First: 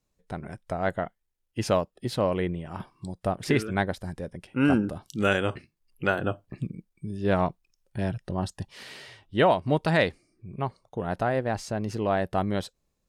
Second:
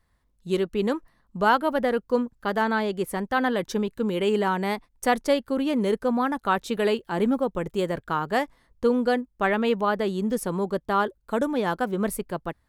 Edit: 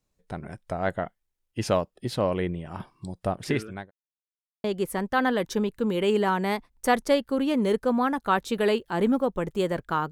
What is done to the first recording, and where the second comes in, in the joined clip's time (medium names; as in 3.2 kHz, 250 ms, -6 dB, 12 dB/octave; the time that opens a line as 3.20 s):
first
3.18–3.91 s: fade out equal-power
3.91–4.64 s: mute
4.64 s: go over to second from 2.83 s